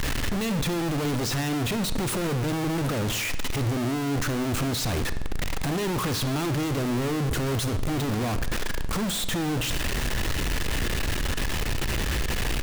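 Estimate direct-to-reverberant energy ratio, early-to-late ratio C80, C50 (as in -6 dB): 11.0 dB, 14.5 dB, 12.5 dB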